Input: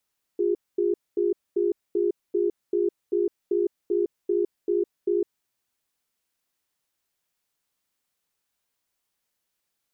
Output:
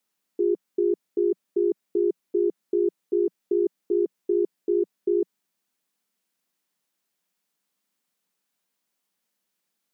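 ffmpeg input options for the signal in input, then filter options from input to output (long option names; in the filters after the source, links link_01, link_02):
-f lavfi -i "aevalsrc='0.0708*(sin(2*PI*352*t)+sin(2*PI*407*t))*clip(min(mod(t,0.39),0.16-mod(t,0.39))/0.005,0,1)':duration=4.93:sample_rate=44100"
-af "lowshelf=frequency=140:width_type=q:width=3:gain=-9.5"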